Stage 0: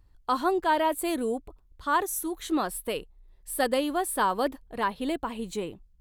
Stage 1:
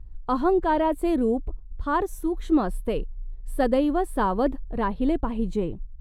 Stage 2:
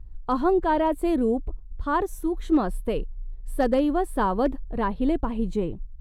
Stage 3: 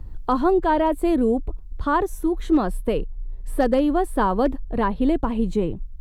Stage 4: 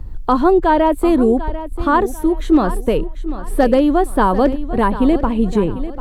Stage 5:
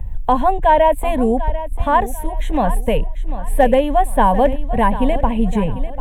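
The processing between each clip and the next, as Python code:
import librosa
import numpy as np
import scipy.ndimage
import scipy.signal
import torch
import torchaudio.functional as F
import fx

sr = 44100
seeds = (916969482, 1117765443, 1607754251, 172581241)

y1 = fx.tilt_eq(x, sr, slope=-4.0)
y2 = np.clip(y1, -10.0 ** (-13.0 / 20.0), 10.0 ** (-13.0 / 20.0))
y3 = fx.band_squash(y2, sr, depth_pct=40)
y3 = F.gain(torch.from_numpy(y3), 3.0).numpy()
y4 = fx.echo_feedback(y3, sr, ms=744, feedback_pct=33, wet_db=-13.5)
y4 = F.gain(torch.from_numpy(y4), 6.0).numpy()
y5 = fx.fixed_phaser(y4, sr, hz=1300.0, stages=6)
y5 = F.gain(torch.from_numpy(y5), 4.0).numpy()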